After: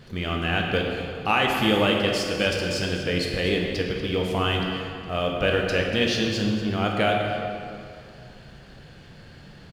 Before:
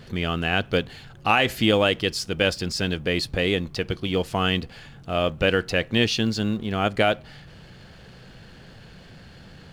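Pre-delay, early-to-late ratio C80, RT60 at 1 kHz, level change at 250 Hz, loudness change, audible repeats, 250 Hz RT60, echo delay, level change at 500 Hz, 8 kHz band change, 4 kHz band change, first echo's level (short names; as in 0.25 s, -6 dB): 11 ms, 2.5 dB, 2.4 s, 0.0 dB, -0.5 dB, 1, 2.4 s, 0.239 s, 0.0 dB, -1.5 dB, -1.0 dB, -12.5 dB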